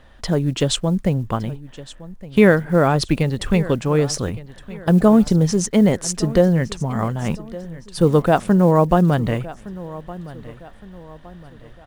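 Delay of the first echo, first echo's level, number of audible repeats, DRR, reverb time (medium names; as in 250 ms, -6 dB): 1164 ms, -18.0 dB, 3, no reverb, no reverb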